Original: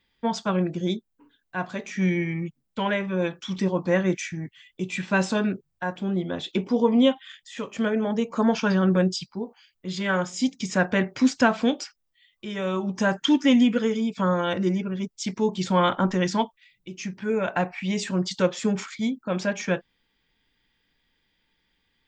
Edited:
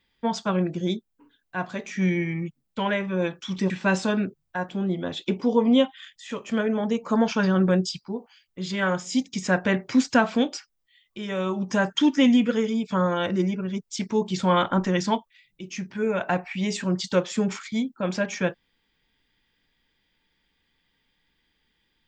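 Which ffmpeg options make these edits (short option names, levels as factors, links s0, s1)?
-filter_complex "[0:a]asplit=2[s0][s1];[s0]atrim=end=3.702[s2];[s1]atrim=start=4.968[s3];[s2][s3]acrossfade=d=0.004:c1=hsin:c2=hsin"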